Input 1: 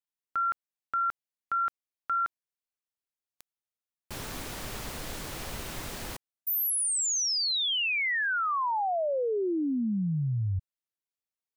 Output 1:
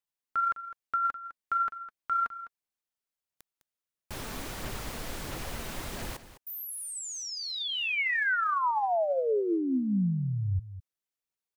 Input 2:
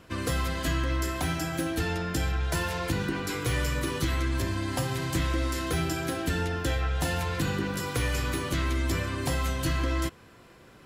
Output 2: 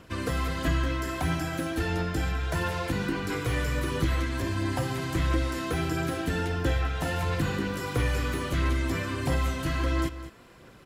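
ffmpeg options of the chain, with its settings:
-filter_complex "[0:a]acrossover=split=2600[a][b];[b]acompressor=threshold=-40dB:ratio=4:attack=1:release=60[c];[a][c]amix=inputs=2:normalize=0,aphaser=in_gain=1:out_gain=1:delay=4.7:decay=0.27:speed=1.5:type=sinusoidal,asplit=2[d][e];[e]aecho=0:1:206:0.2[f];[d][f]amix=inputs=2:normalize=0"

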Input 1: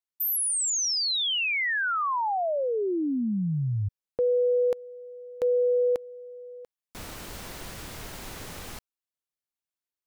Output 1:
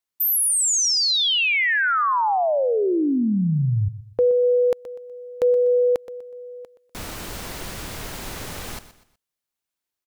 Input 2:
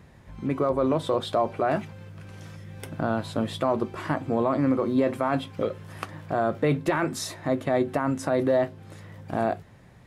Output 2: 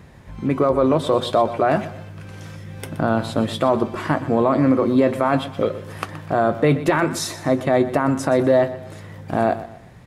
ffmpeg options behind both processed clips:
-af "aecho=1:1:123|246|369:0.188|0.0659|0.0231,volume=6.5dB"

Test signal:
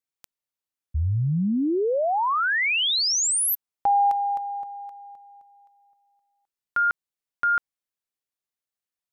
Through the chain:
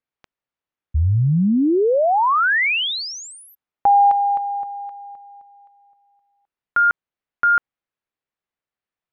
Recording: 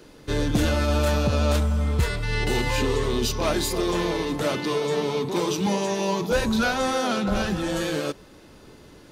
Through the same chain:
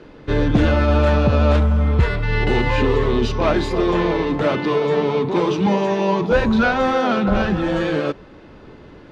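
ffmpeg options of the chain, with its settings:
-af "lowpass=2.5k,volume=6.5dB"

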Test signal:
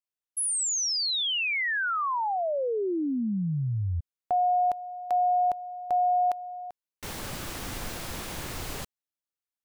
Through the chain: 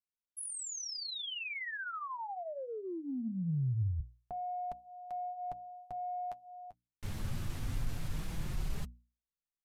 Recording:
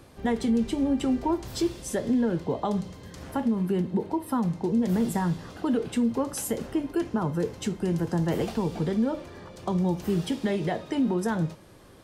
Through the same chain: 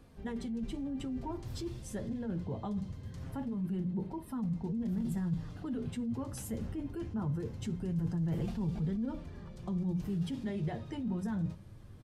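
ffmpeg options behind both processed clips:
-af "flanger=delay=4.1:depth=6:regen=-30:speed=0.22:shape=triangular,bass=f=250:g=9,treble=f=4k:g=-2,bandreject=f=60:t=h:w=6,bandreject=f=120:t=h:w=6,bandreject=f=180:t=h:w=6,bandreject=f=240:t=h:w=6,bandreject=f=300:t=h:w=6,areverse,acompressor=threshold=-32dB:ratio=6:attack=25:release=23:knee=6:detection=peak,areverse,asubboost=boost=2:cutoff=230,aresample=32000,aresample=44100,volume=-7dB"

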